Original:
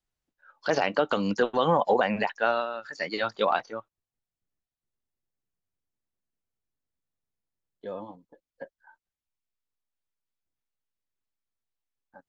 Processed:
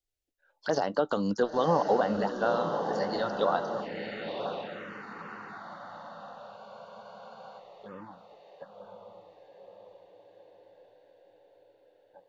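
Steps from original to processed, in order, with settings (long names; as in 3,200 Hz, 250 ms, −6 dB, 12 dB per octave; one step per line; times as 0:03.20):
feedback delay with all-pass diffusion 1,024 ms, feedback 56%, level −5.5 dB
phaser swept by the level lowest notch 190 Hz, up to 2,400 Hz, full sweep at −25.5 dBFS
frozen spectrum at 0:06.59, 1.00 s
level −1.5 dB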